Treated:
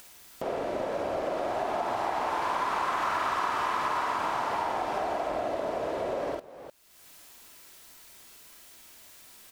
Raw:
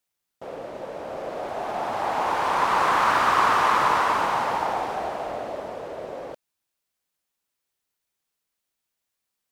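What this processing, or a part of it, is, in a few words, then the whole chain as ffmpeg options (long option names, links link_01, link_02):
upward and downward compression: -af "aecho=1:1:47|50|353:0.668|0.596|0.112,acompressor=mode=upward:threshold=-37dB:ratio=2.5,acompressor=threshold=-32dB:ratio=6,volume=4.5dB"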